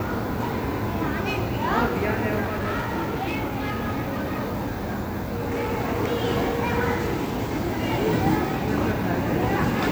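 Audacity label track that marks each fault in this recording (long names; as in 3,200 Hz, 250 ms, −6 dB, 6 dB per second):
2.420000	5.730000	clipping −22.5 dBFS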